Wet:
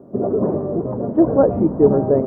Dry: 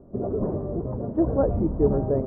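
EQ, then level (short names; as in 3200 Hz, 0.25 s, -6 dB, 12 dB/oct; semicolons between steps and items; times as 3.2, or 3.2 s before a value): HPF 160 Hz 12 dB/oct; +8.5 dB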